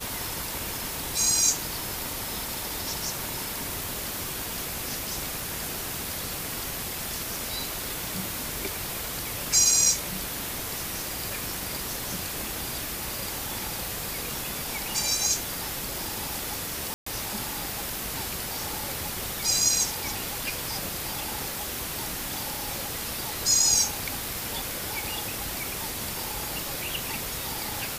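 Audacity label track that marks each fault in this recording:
16.940000	17.060000	gap 0.124 s

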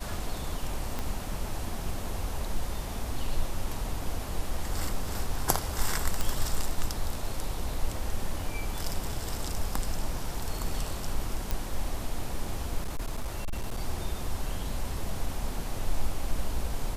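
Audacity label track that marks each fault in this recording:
0.990000	0.990000	pop -18 dBFS
6.210000	6.210000	pop
11.510000	11.510000	pop
12.820000	13.800000	clipped -27 dBFS

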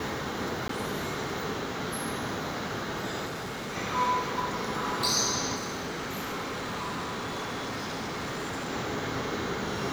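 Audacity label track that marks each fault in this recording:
0.680000	0.690000	gap 13 ms
3.250000	3.770000	clipped -33 dBFS
5.550000	8.690000	clipped -31 dBFS

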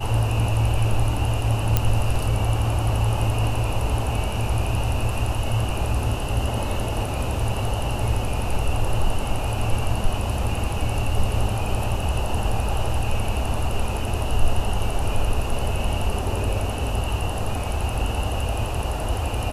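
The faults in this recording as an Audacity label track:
1.770000	1.770000	pop -4 dBFS

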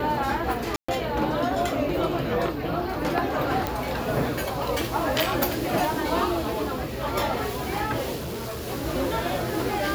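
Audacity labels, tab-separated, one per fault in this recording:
0.760000	0.890000	gap 0.125 s
3.670000	3.670000	pop
8.150000	8.680000	clipped -29 dBFS

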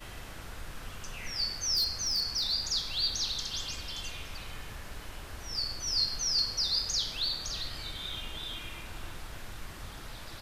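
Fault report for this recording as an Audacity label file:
1.740000	2.530000	clipped -24.5 dBFS

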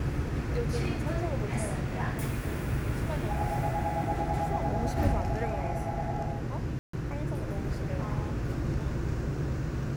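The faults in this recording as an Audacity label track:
6.790000	6.930000	gap 0.144 s

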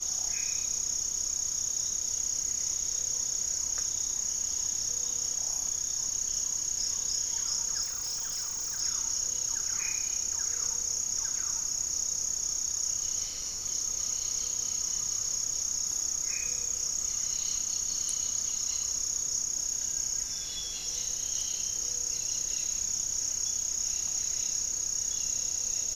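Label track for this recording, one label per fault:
7.820000	8.810000	clipped -31 dBFS

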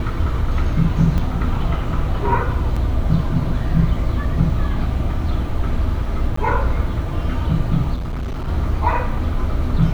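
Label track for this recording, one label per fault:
1.180000	1.180000	gap 4 ms
2.760000	2.770000	gap 5.1 ms
6.360000	6.370000	gap 14 ms
7.940000	8.490000	clipped -21.5 dBFS

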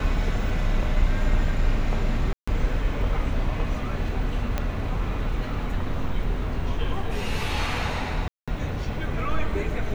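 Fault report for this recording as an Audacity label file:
2.330000	2.480000	gap 0.145 s
4.580000	4.580000	pop -12 dBFS
8.280000	8.480000	gap 0.196 s

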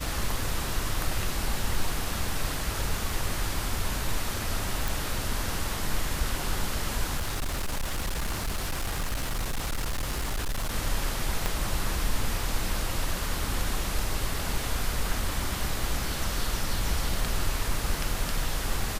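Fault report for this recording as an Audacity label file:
4.880000	4.880000	pop
7.170000	10.760000	clipped -25.5 dBFS
11.460000	11.460000	pop

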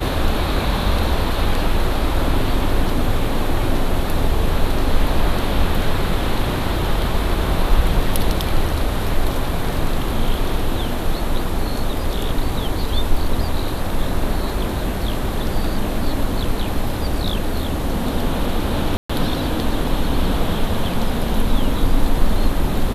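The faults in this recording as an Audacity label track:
18.970000	19.090000	gap 0.125 s

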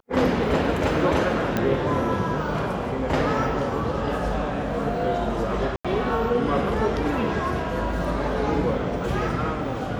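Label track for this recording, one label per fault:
1.570000	1.570000	pop -10 dBFS
5.760000	5.850000	gap 86 ms

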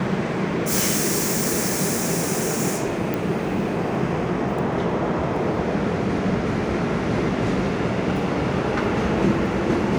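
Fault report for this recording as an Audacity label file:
3.140000	3.140000	pop

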